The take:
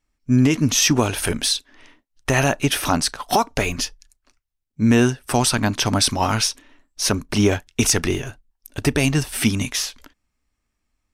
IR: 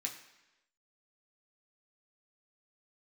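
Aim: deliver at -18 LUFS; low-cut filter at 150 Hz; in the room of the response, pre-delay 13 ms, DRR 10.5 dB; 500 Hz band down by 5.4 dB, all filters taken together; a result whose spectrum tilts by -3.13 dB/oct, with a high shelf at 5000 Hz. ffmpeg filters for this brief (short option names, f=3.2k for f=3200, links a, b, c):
-filter_complex "[0:a]highpass=150,equalizer=f=500:t=o:g=-7.5,highshelf=f=5k:g=6.5,asplit=2[a][b];[1:a]atrim=start_sample=2205,adelay=13[c];[b][c]afir=irnorm=-1:irlink=0,volume=-10.5dB[d];[a][d]amix=inputs=2:normalize=0,volume=0.5dB"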